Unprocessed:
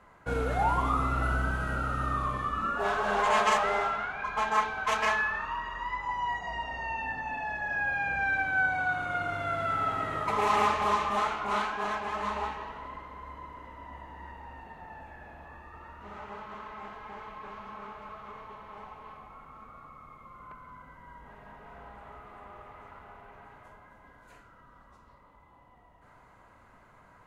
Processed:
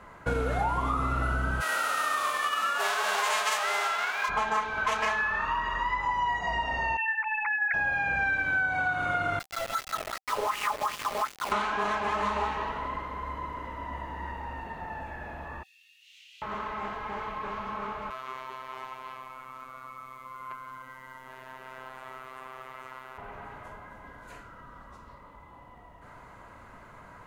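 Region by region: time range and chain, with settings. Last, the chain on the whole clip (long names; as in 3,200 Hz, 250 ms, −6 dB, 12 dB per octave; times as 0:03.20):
0:01.60–0:04.28: spectral envelope flattened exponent 0.6 + high-pass filter 680 Hz
0:06.97–0:07.74: three sine waves on the formant tracks + high-pass filter 660 Hz
0:09.39–0:11.52: hollow resonant body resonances 540/2,900 Hz, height 7 dB, ringing for 85 ms + LFO wah 2.7 Hz 490–3,100 Hz, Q 3.6 + centre clipping without the shift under −38 dBFS
0:15.63–0:16.42: Butterworth high-pass 2,700 Hz 48 dB per octave + double-tracking delay 25 ms −4 dB
0:18.10–0:23.18: spectral tilt +3 dB per octave + phases set to zero 130 Hz
whole clip: notch filter 770 Hz, Q 21; downward compressor, threshold −33 dBFS; level +8 dB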